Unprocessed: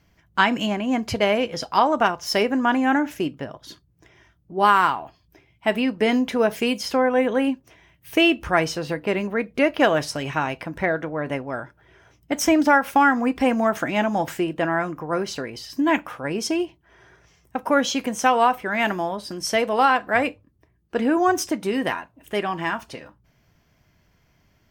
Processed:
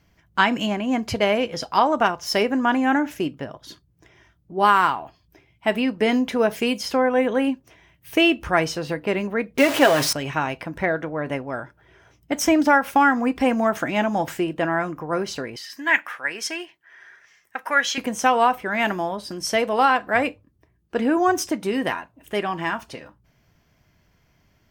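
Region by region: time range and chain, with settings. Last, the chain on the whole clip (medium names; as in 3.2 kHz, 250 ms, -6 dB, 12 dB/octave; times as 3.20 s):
9.58–10.13 s: jump at every zero crossing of -20 dBFS + high-pass 230 Hz 6 dB/octave + comb 7.4 ms, depth 42%
15.56–17.98 s: high-pass 1.4 kHz 6 dB/octave + peaking EQ 1.8 kHz +12.5 dB 0.69 oct
whole clip: none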